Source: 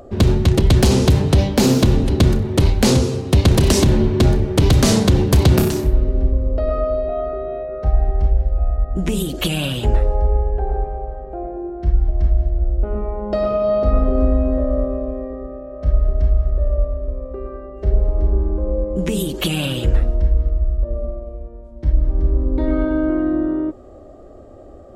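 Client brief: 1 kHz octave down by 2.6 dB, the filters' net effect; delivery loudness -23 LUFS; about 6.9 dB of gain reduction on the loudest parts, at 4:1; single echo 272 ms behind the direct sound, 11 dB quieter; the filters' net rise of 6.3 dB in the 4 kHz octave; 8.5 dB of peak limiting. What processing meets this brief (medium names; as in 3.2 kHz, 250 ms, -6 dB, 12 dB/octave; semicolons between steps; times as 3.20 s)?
peaking EQ 1 kHz -4 dB; peaking EQ 4 kHz +8 dB; compression 4:1, threshold -17 dBFS; peak limiter -11.5 dBFS; delay 272 ms -11 dB; trim +0.5 dB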